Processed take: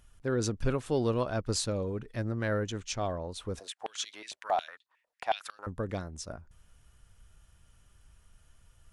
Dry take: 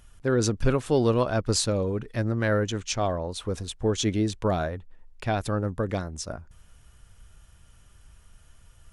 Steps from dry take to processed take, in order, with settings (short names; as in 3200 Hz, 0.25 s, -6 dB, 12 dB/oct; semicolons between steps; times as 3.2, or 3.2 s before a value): 3.59–5.67 stepped high-pass 11 Hz 600–3900 Hz; gain -6.5 dB